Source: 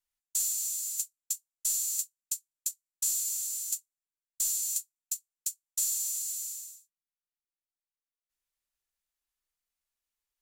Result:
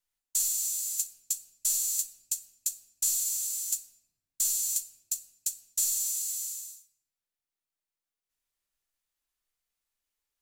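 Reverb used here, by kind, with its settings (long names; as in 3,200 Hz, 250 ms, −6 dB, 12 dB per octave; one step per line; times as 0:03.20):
rectangular room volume 370 cubic metres, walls mixed, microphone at 0.4 metres
level +2 dB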